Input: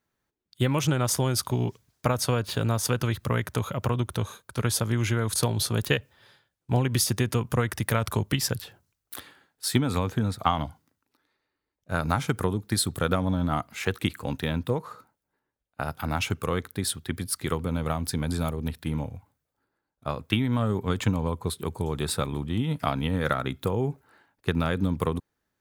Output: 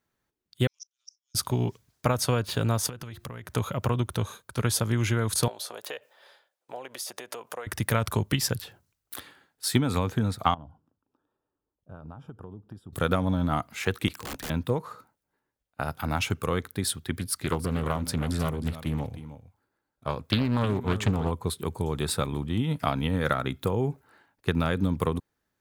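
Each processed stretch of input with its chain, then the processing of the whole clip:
0.67–1.35 Butterworth band-pass 5600 Hz, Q 7.8 + flipped gate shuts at -31 dBFS, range -31 dB
2.89–3.5 compressor 20:1, threshold -34 dBFS + de-hum 348.9 Hz, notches 2
5.48–7.67 compressor 5:1, threshold -32 dBFS + resonant high-pass 580 Hz, resonance Q 2.2
10.54–12.93 compressor 3:1, threshold -43 dBFS + running mean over 21 samples
14.08–14.5 low shelf 200 Hz -4.5 dB + wrapped overs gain 29.5 dB
17.17–21.31 de-esser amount 20% + echo 0.312 s -13 dB + Doppler distortion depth 0.59 ms
whole clip: dry

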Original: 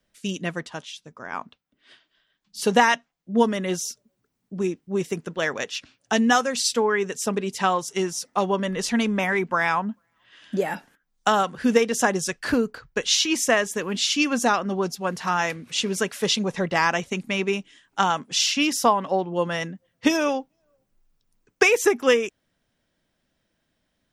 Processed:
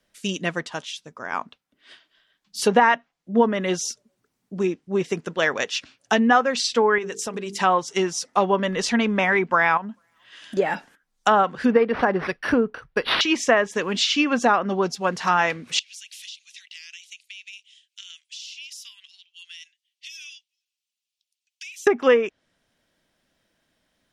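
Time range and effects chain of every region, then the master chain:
6.98–7.59 gate -36 dBFS, range -9 dB + notches 50/100/150/200/250/300/350/400/450 Hz + compressor 3:1, threshold -30 dBFS
9.77–10.57 high shelf 5000 Hz +6 dB + compressor, threshold -31 dBFS
11.71–13.21 bell 10000 Hz -9.5 dB 1.1 oct + decimation joined by straight lines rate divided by 6×
15.79–21.87 steep high-pass 2700 Hz + high shelf 6400 Hz -11.5 dB + compressor, threshold -41 dBFS
whole clip: treble ducked by the level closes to 1800 Hz, closed at -16 dBFS; low shelf 250 Hz -6.5 dB; maximiser +9.5 dB; gain -5 dB

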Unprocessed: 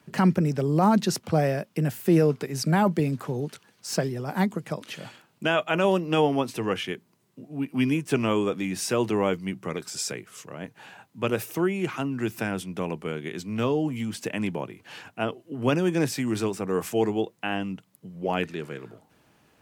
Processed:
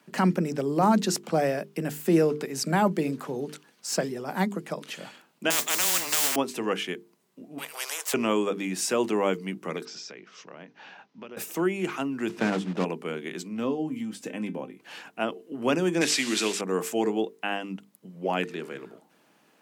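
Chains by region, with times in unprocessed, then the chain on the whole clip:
5.5–6.36 modulation noise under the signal 26 dB + frequency shift -16 Hz + spectral compressor 10:1
7.58–8.14 Chebyshev high-pass 440 Hz, order 8 + spectral compressor 4:1
9.85–11.37 elliptic low-pass 5800 Hz, stop band 60 dB + compressor, threshold -38 dBFS
12.29–12.85 block floating point 3-bit + Bessel low-pass 3700 Hz + low shelf 420 Hz +8.5 dB
13.48–14.8 low shelf 450 Hz +8.5 dB + resonator 260 Hz, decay 0.16 s, mix 70%
16.01–16.61 delta modulation 64 kbps, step -34.5 dBFS + weighting filter D
whole clip: HPF 180 Hz 24 dB/oct; dynamic EQ 7400 Hz, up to +5 dB, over -55 dBFS, Q 3.6; notches 50/100/150/200/250/300/350/400/450 Hz

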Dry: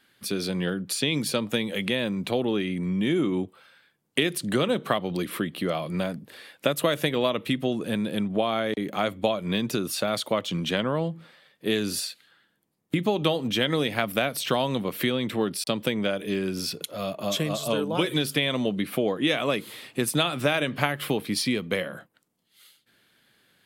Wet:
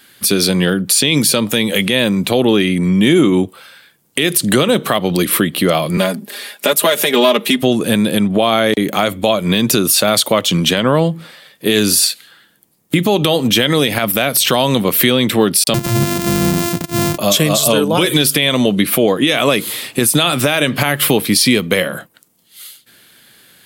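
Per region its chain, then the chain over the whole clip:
5.97–7.63 half-wave gain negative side -3 dB + HPF 210 Hz 24 dB/oct + comb 4.9 ms, depth 79%
15.74–17.18 sample sorter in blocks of 128 samples + bell 150 Hz +13 dB 1.4 oct + compressor 2.5:1, threshold -25 dBFS
whole clip: high shelf 5400 Hz +11.5 dB; maximiser +14.5 dB; gain -1 dB

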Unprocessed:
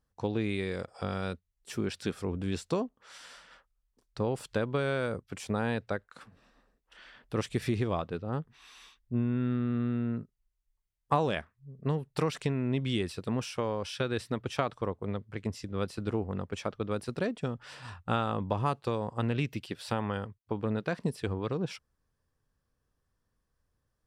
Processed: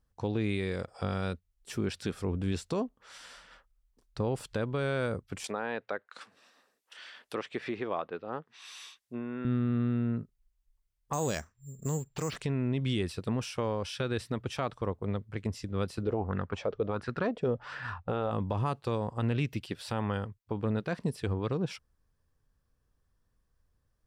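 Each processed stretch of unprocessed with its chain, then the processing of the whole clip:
5.44–9.45 HPF 370 Hz + treble ducked by the level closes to 1800 Hz, closed at -34 dBFS + high shelf 2400 Hz +10.5 dB
11.13–12.36 careless resampling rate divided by 6×, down none, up zero stuff + air absorption 170 m
16.03–18.31 air absorption 100 m + LFO bell 1.4 Hz 420–1700 Hz +15 dB
whole clip: low shelf 81 Hz +8 dB; limiter -21 dBFS

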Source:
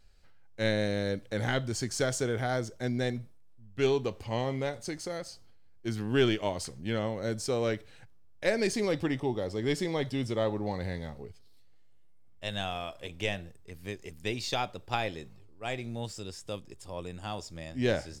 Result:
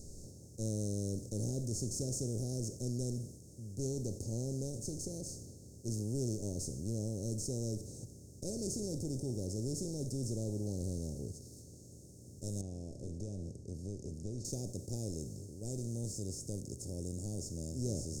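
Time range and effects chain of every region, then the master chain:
12.61–14.45 compressor 2:1, threshold -40 dBFS + tape spacing loss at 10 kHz 32 dB
whole clip: per-bin compression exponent 0.4; elliptic band-stop 610–5900 Hz, stop band 40 dB; passive tone stack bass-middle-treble 6-0-2; gain +8.5 dB

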